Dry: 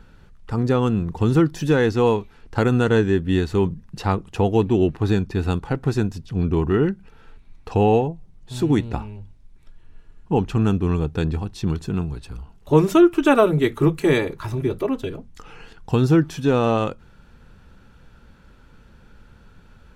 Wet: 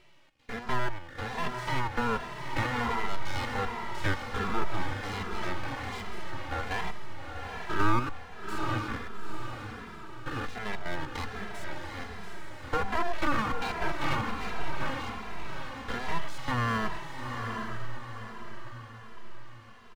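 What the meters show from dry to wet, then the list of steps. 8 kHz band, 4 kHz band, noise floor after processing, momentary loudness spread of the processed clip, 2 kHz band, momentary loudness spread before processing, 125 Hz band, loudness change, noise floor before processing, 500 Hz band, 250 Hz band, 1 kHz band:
-6.0 dB, -4.0 dB, -46 dBFS, 14 LU, -2.0 dB, 11 LU, -15.5 dB, -13.5 dB, -50 dBFS, -17.5 dB, -17.5 dB, -4.0 dB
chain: stepped spectrum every 0.1 s; HPF 560 Hz 24 dB/oct; treble ducked by the level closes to 820 Hz, closed at -22 dBFS; LPF 1500 Hz 6 dB/oct; in parallel at -3 dB: limiter -25.5 dBFS, peak gain reduction 10.5 dB; on the sum: full-wave rectifier; on a send: diffused feedback echo 0.834 s, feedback 45%, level -5 dB; on the sum: endless flanger 2.6 ms -1.3 Hz; gain +3.5 dB

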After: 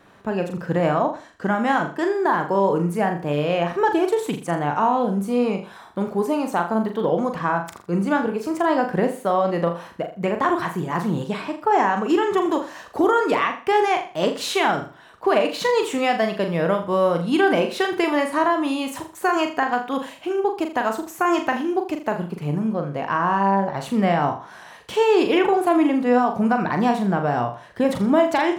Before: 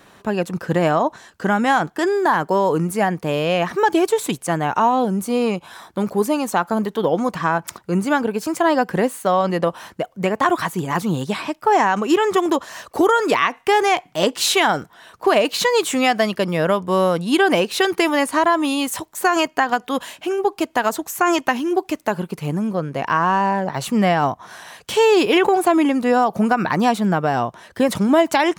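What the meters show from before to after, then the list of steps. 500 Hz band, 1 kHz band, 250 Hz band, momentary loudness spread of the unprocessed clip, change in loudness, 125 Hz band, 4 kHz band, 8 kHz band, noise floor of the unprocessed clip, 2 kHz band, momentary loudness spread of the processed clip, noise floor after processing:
-2.0 dB, -2.5 dB, -2.0 dB, 8 LU, -2.5 dB, -1.5 dB, -6.5 dB, -10.5 dB, -53 dBFS, -4.0 dB, 8 LU, -45 dBFS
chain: high shelf 3500 Hz -10 dB; on a send: flutter echo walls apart 7 m, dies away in 0.38 s; on the sum: gain -3 dB

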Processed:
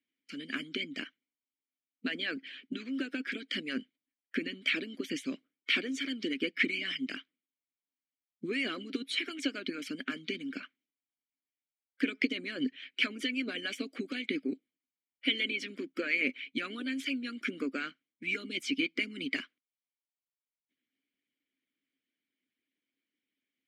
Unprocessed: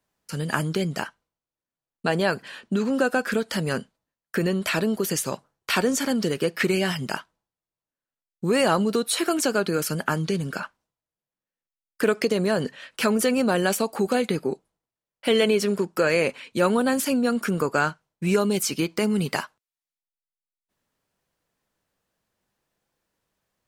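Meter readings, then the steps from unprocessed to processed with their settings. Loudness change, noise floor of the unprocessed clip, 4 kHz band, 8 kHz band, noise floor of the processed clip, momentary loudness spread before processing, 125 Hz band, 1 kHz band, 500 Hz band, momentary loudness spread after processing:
-10.0 dB, under -85 dBFS, -4.0 dB, -21.0 dB, under -85 dBFS, 10 LU, -24.5 dB, -21.0 dB, -19.0 dB, 10 LU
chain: harmonic-percussive split harmonic -15 dB; overdrive pedal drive 9 dB, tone 4700 Hz, clips at -6 dBFS; vowel filter i; gain +7 dB

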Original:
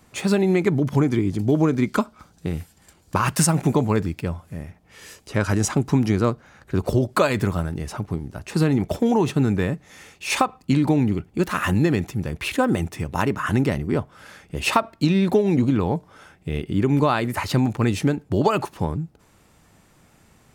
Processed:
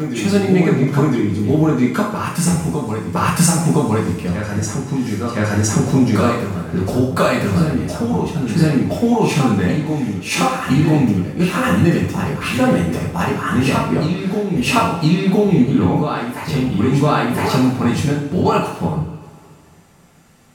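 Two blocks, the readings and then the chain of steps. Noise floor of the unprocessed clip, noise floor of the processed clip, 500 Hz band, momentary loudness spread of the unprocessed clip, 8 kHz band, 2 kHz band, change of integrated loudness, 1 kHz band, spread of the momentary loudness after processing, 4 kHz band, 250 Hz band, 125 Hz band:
-57 dBFS, -44 dBFS, +4.5 dB, 11 LU, +6.0 dB, +5.5 dB, +5.0 dB, +5.5 dB, 7 LU, +6.0 dB, +6.0 dB, +6.0 dB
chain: reverse echo 1.013 s -5.5 dB; two-slope reverb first 0.56 s, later 2.4 s, from -18 dB, DRR -5.5 dB; gain -2 dB

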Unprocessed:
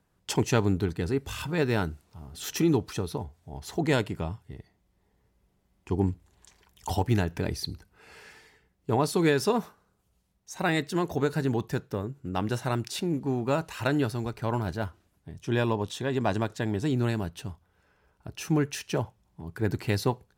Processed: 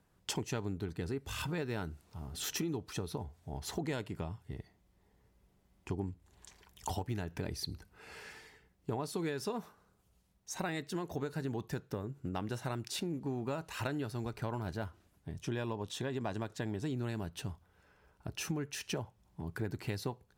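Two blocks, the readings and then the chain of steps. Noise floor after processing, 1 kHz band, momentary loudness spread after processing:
-71 dBFS, -10.5 dB, 12 LU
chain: compressor 5:1, threshold -35 dBFS, peak gain reduction 15 dB

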